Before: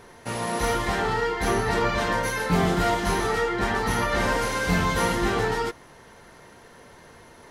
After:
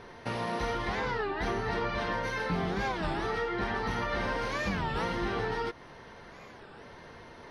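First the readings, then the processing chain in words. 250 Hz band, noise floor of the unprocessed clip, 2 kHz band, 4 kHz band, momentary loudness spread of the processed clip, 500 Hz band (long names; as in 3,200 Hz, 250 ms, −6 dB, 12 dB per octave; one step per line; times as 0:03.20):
−8.0 dB, −50 dBFS, −7.0 dB, −8.0 dB, 18 LU, −7.5 dB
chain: downward compressor 3 to 1, threshold −31 dBFS, peak gain reduction 10.5 dB
Savitzky-Golay smoothing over 15 samples
wow of a warped record 33 1/3 rpm, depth 250 cents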